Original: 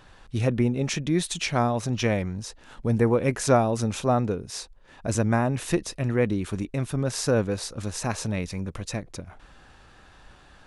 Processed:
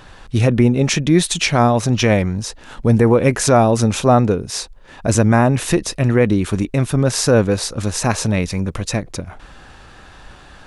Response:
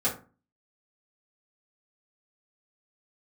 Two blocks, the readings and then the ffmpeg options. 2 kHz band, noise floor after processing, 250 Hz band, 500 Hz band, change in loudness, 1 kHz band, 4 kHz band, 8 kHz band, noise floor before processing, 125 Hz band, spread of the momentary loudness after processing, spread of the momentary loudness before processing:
+9.5 dB, -42 dBFS, +10.0 dB, +9.0 dB, +9.5 dB, +9.5 dB, +10.5 dB, +10.5 dB, -53 dBFS, +10.0 dB, 11 LU, 12 LU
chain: -af "alimiter=level_in=3.98:limit=0.891:release=50:level=0:latency=1,volume=0.841"

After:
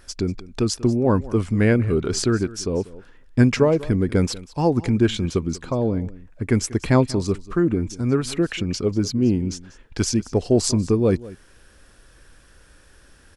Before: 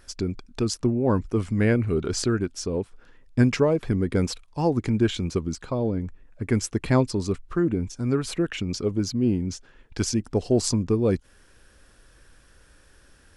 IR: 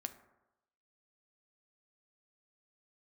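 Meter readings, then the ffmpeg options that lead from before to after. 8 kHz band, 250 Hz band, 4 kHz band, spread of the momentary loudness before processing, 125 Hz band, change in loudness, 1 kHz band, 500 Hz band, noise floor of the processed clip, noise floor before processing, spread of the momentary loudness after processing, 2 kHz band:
+3.5 dB, +3.5 dB, +3.5 dB, 9 LU, +3.5 dB, +3.5 dB, +3.5 dB, +3.5 dB, -52 dBFS, -56 dBFS, 9 LU, +3.5 dB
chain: -af "aecho=1:1:191:0.112,volume=1.5"

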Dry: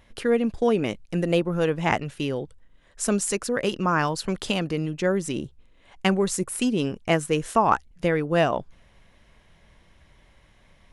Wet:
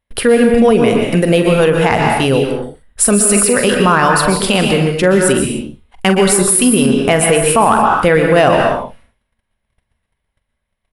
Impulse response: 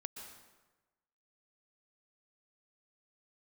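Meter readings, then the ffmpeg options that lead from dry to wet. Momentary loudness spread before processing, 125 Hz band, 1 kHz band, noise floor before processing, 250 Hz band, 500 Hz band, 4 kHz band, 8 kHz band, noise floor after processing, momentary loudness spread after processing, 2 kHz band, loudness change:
7 LU, +11.5 dB, +12.5 dB, -58 dBFS, +12.5 dB, +13.0 dB, +13.5 dB, +18.5 dB, -73 dBFS, 7 LU, +13.5 dB, +13.0 dB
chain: -filter_complex "[0:a]agate=range=0.0158:threshold=0.00355:ratio=16:detection=peak,equalizer=f=160:t=o:w=0.33:g=-4,equalizer=f=315:t=o:w=0.33:g=-6,equalizer=f=6300:t=o:w=0.33:g=-9,equalizer=f=10000:t=o:w=0.33:g=11,acontrast=82,asplit=2[s0][s1];[s1]adelay=44,volume=0.251[s2];[s0][s2]amix=inputs=2:normalize=0[s3];[1:a]atrim=start_sample=2205,afade=t=out:st=0.36:d=0.01,atrim=end_sample=16317[s4];[s3][s4]afir=irnorm=-1:irlink=0,alimiter=level_in=4.73:limit=0.891:release=50:level=0:latency=1,volume=0.891"

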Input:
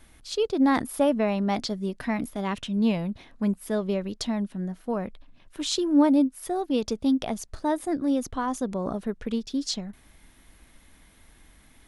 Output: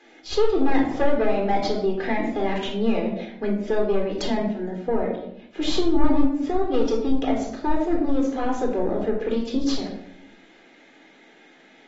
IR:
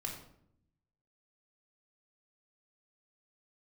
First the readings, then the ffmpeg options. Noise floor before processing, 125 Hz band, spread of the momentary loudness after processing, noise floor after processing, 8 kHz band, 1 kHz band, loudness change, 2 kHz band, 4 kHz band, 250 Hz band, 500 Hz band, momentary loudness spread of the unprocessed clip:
-56 dBFS, 0.0 dB, 7 LU, -52 dBFS, -5.0 dB, +3.5 dB, +2.5 dB, +4.0 dB, +1.0 dB, +1.0 dB, +5.5 dB, 9 LU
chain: -filter_complex "[0:a]highpass=f=300:w=0.5412,highpass=f=300:w=1.3066,equalizer=f=1100:t=o:w=0.4:g=-14.5,aeval=exprs='(tanh(15.8*val(0)+0.4)-tanh(0.4))/15.8':c=same,lowpass=f=1900:p=1[s0];[1:a]atrim=start_sample=2205[s1];[s0][s1]afir=irnorm=-1:irlink=0,asplit=2[s2][s3];[s3]acompressor=threshold=0.02:ratio=12,volume=1.41[s4];[s2][s4]amix=inputs=2:normalize=0,volume=2" -ar 44100 -c:a aac -b:a 24k

